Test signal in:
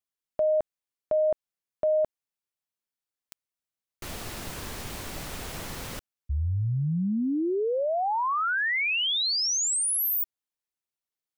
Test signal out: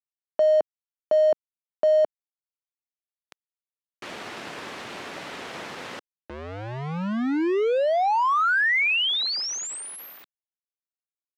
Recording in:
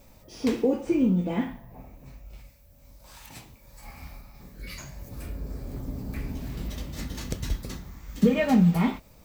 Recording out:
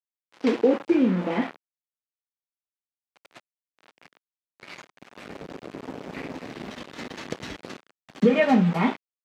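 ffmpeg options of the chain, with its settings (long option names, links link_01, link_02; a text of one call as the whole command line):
ffmpeg -i in.wav -af "crystalizer=i=2:c=0,aeval=exprs='val(0)*gte(abs(val(0)),0.0282)':channel_layout=same,highpass=260,lowpass=2500,volume=5dB" out.wav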